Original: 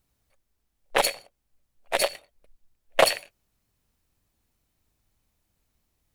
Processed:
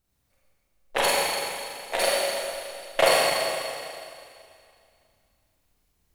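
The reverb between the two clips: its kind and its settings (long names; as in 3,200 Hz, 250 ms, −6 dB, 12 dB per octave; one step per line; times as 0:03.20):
four-comb reverb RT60 2.4 s, combs from 32 ms, DRR −7 dB
level −4.5 dB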